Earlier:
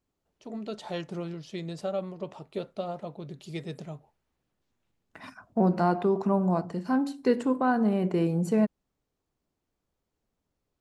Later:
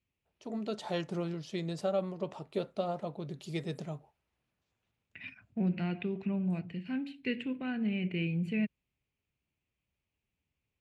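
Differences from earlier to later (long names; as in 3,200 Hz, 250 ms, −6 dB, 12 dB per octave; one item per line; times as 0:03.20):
second voice: add drawn EQ curve 110 Hz 0 dB, 1,100 Hz −24 dB, 2,500 Hz +11 dB, 5,900 Hz −23 dB
master: add high-pass filter 53 Hz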